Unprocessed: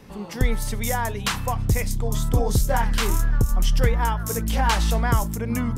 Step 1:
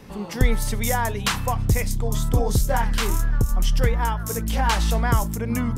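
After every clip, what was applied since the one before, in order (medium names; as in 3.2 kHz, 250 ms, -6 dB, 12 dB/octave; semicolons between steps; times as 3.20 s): gain riding within 3 dB 2 s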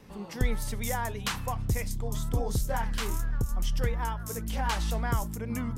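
vibrato 8.8 Hz 34 cents; trim -8.5 dB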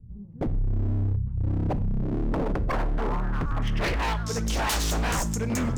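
low-pass sweep 100 Hz -> 7 kHz, 1.64–4.59 s; wavefolder -28 dBFS; Schroeder reverb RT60 0.44 s, combs from 32 ms, DRR 17 dB; trim +7.5 dB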